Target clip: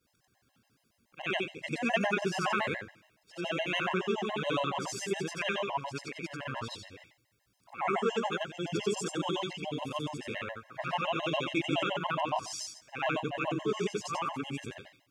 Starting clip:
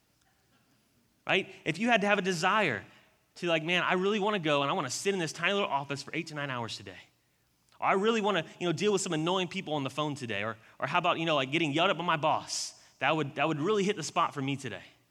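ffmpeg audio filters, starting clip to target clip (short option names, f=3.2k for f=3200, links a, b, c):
-af "afftfilt=real='re':imag='-im':win_size=8192:overlap=0.75,afftfilt=real='re*gt(sin(2*PI*7.1*pts/sr)*(1-2*mod(floor(b*sr/1024/540),2)),0)':imag='im*gt(sin(2*PI*7.1*pts/sr)*(1-2*mod(floor(b*sr/1024/540),2)),0)':win_size=1024:overlap=0.75,volume=4dB"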